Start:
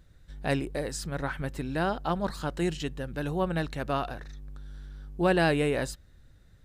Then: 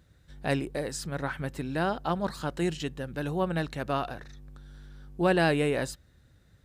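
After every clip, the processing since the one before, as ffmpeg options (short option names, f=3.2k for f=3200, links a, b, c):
-af "highpass=64"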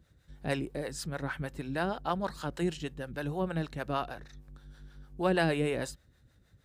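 -filter_complex "[0:a]acrossover=split=440[a][b];[a]aeval=exprs='val(0)*(1-0.7/2+0.7/2*cos(2*PI*6.4*n/s))':c=same[c];[b]aeval=exprs='val(0)*(1-0.7/2-0.7/2*cos(2*PI*6.4*n/s))':c=same[d];[c][d]amix=inputs=2:normalize=0"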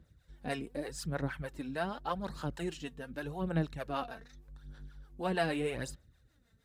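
-af "aphaser=in_gain=1:out_gain=1:delay=4.5:decay=0.56:speed=0.84:type=sinusoidal,volume=-5dB"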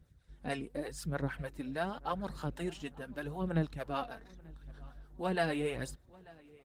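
-filter_complex "[0:a]asplit=2[a][b];[b]adelay=888,lowpass=f=3.8k:p=1,volume=-23dB,asplit=2[c][d];[d]adelay=888,lowpass=f=3.8k:p=1,volume=0.47,asplit=2[e][f];[f]adelay=888,lowpass=f=3.8k:p=1,volume=0.47[g];[a][c][e][g]amix=inputs=4:normalize=0" -ar 48000 -c:a libopus -b:a 24k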